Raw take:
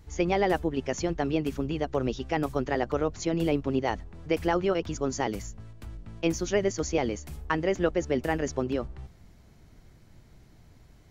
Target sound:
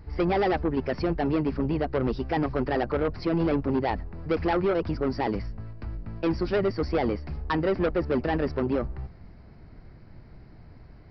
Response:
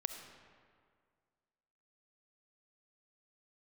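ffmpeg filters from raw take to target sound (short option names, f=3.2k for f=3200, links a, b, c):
-af "equalizer=f=3.4k:t=o:w=0.63:g=-14.5,aresample=11025,asoftclip=type=tanh:threshold=-25.5dB,aresample=44100,volume=6.5dB"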